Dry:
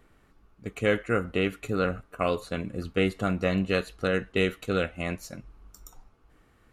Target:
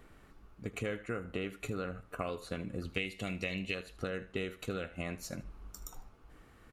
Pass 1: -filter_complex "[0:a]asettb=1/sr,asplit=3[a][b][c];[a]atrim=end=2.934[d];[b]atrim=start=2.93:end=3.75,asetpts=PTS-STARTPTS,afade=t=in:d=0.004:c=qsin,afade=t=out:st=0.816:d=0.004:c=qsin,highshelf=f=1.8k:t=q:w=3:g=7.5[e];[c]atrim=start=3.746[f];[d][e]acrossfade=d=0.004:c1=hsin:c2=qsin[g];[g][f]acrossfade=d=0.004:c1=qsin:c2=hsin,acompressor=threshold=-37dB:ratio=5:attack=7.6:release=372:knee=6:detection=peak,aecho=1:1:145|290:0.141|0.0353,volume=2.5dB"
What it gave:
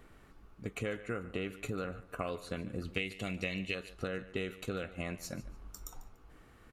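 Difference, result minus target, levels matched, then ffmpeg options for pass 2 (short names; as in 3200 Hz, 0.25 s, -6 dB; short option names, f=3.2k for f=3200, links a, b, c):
echo 68 ms late
-filter_complex "[0:a]asettb=1/sr,asplit=3[a][b][c];[a]atrim=end=2.934[d];[b]atrim=start=2.93:end=3.75,asetpts=PTS-STARTPTS,afade=t=in:d=0.004:c=qsin,afade=t=out:st=0.816:d=0.004:c=qsin,highshelf=f=1.8k:t=q:w=3:g=7.5[e];[c]atrim=start=3.746[f];[d][e]acrossfade=d=0.004:c1=hsin:c2=qsin[g];[g][f]acrossfade=d=0.004:c1=qsin:c2=hsin,acompressor=threshold=-37dB:ratio=5:attack=7.6:release=372:knee=6:detection=peak,aecho=1:1:77|154:0.141|0.0353,volume=2.5dB"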